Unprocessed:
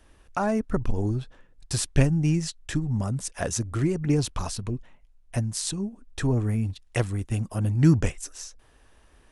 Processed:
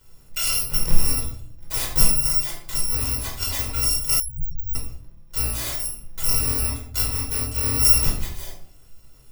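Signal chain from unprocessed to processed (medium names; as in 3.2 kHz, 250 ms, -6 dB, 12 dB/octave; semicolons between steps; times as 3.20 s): bit-reversed sample order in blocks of 256 samples; reverberation RT60 0.60 s, pre-delay 13 ms, DRR -2.5 dB; 4.20–4.75 s: loudest bins only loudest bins 8; trim -2.5 dB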